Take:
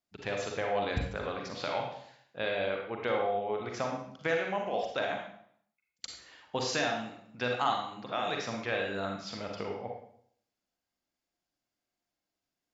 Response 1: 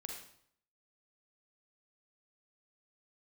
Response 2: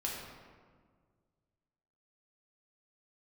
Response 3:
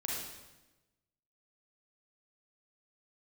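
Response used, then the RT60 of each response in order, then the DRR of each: 1; 0.65, 1.7, 1.1 seconds; 0.5, −4.0, −4.0 decibels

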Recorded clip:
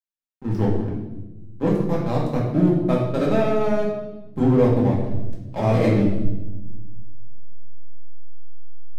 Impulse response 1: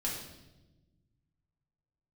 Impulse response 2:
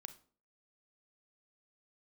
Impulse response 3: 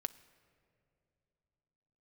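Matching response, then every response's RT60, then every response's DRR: 1; 1.1 s, 0.45 s, non-exponential decay; −4.5, 10.0, 12.5 decibels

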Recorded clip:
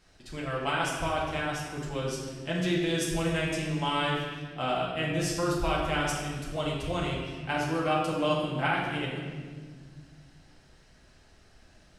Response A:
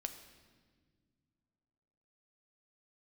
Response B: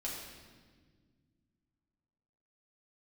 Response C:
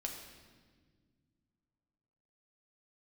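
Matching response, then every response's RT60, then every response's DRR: B; non-exponential decay, 1.6 s, 1.6 s; 7.0, −5.5, 1.0 decibels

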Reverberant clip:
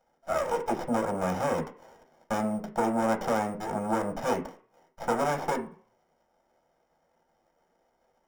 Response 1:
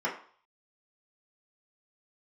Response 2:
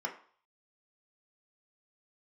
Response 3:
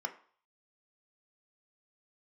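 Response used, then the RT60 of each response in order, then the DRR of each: 3; 0.50, 0.50, 0.50 seconds; −6.0, 0.5, 5.0 decibels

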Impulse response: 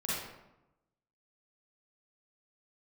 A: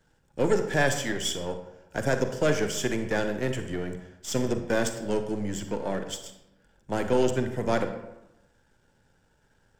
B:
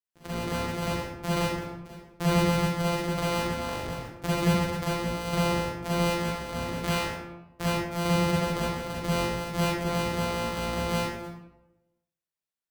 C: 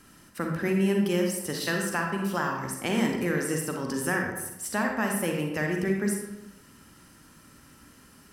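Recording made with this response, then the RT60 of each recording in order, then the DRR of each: B; 0.95, 0.95, 0.95 seconds; 7.0, −8.5, 1.0 decibels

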